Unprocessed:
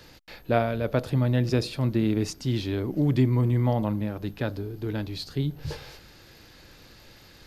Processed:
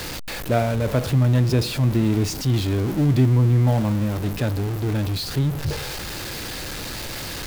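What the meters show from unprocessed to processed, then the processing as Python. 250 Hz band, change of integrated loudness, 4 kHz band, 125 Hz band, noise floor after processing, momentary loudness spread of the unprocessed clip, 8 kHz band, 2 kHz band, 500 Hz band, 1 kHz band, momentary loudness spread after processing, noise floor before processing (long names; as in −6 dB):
+4.0 dB, +4.5 dB, +8.5 dB, +7.0 dB, −31 dBFS, 10 LU, +12.5 dB, +6.0 dB, +3.0 dB, +3.5 dB, 12 LU, −52 dBFS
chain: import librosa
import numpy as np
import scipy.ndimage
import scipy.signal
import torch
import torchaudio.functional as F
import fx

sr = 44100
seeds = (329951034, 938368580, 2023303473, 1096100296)

y = x + 0.5 * 10.0 ** (-26.0 / 20.0) * np.sign(x)
y = fx.dynamic_eq(y, sr, hz=100.0, q=0.84, threshold_db=-33.0, ratio=4.0, max_db=5)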